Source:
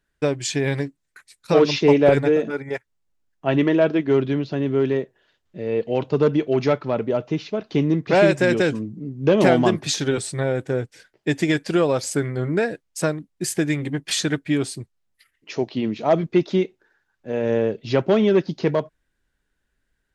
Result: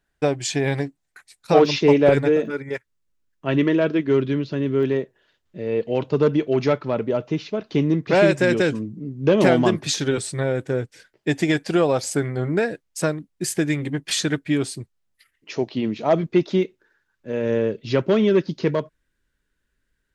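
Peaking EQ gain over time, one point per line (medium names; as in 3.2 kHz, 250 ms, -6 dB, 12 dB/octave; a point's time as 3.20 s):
peaking EQ 750 Hz 0.3 oct
+8.5 dB
from 1.66 s -3 dB
from 2.46 s -13 dB
from 4.83 s -3 dB
from 11.29 s +5 dB
from 12.59 s -1.5 dB
from 16.63 s -11 dB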